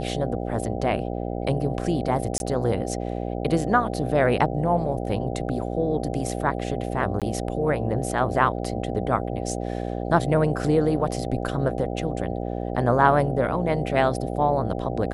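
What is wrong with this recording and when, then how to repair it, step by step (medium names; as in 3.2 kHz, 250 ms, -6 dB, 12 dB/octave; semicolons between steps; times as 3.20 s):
buzz 60 Hz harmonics 13 -29 dBFS
2.38–2.40 s: dropout 21 ms
7.20–7.22 s: dropout 17 ms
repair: de-hum 60 Hz, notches 13; interpolate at 2.38 s, 21 ms; interpolate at 7.20 s, 17 ms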